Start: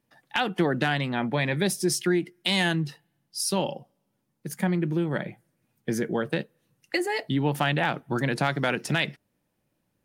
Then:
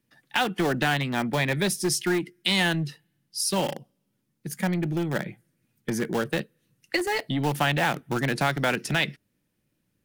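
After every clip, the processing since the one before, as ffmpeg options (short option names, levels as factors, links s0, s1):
-filter_complex "[0:a]acrossover=split=540|1100[s0][s1][s2];[s0]asoftclip=type=tanh:threshold=0.0794[s3];[s1]acrusher=bits=5:mix=0:aa=0.000001[s4];[s3][s4][s2]amix=inputs=3:normalize=0,volume=1.19"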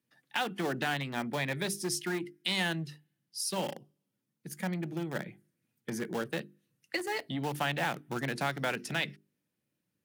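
-af "highpass=110,bandreject=f=50:t=h:w=6,bandreject=f=100:t=h:w=6,bandreject=f=150:t=h:w=6,bandreject=f=200:t=h:w=6,bandreject=f=250:t=h:w=6,bandreject=f=300:t=h:w=6,bandreject=f=350:t=h:w=6,bandreject=f=400:t=h:w=6,volume=0.422"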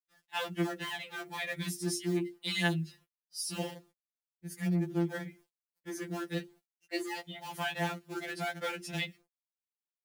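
-af "adynamicequalizer=threshold=0.00398:dfrequency=880:dqfactor=1.1:tfrequency=880:tqfactor=1.1:attack=5:release=100:ratio=0.375:range=2.5:mode=cutabove:tftype=bell,acrusher=bits=10:mix=0:aa=0.000001,afftfilt=real='re*2.83*eq(mod(b,8),0)':imag='im*2.83*eq(mod(b,8),0)':win_size=2048:overlap=0.75"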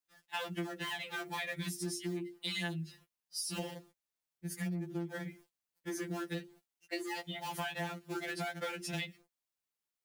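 -af "acompressor=threshold=0.0112:ratio=6,volume=1.5"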